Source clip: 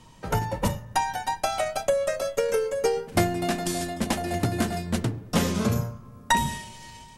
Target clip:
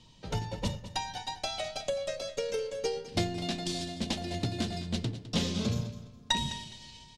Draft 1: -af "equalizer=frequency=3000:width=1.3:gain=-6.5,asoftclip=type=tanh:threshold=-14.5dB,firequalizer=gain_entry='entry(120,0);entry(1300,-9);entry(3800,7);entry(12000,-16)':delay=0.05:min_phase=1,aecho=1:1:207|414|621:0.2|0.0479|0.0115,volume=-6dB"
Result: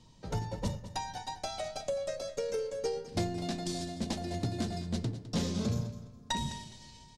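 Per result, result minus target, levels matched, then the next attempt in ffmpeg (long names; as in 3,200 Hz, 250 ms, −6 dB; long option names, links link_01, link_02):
soft clipping: distortion +19 dB; 4,000 Hz band −4.5 dB
-af "equalizer=frequency=3000:width=1.3:gain=-6.5,asoftclip=type=tanh:threshold=-2.5dB,firequalizer=gain_entry='entry(120,0);entry(1300,-9);entry(3800,7);entry(12000,-16)':delay=0.05:min_phase=1,aecho=1:1:207|414|621:0.2|0.0479|0.0115,volume=-6dB"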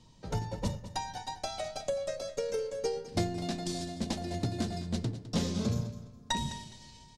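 4,000 Hz band −4.5 dB
-af "equalizer=frequency=3000:width=1.3:gain=2.5,asoftclip=type=tanh:threshold=-2.5dB,firequalizer=gain_entry='entry(120,0);entry(1300,-9);entry(3800,7);entry(12000,-16)':delay=0.05:min_phase=1,aecho=1:1:207|414|621:0.2|0.0479|0.0115,volume=-6dB"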